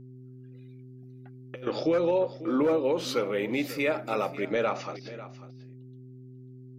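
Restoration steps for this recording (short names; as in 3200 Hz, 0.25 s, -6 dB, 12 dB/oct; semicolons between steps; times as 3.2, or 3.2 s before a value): de-hum 127.5 Hz, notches 3; inverse comb 0.544 s -15.5 dB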